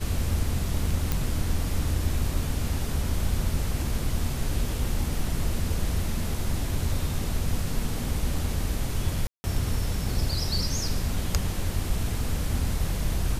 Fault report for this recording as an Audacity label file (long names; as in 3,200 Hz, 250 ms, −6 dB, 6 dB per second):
1.120000	1.120000	click
9.270000	9.440000	drop-out 170 ms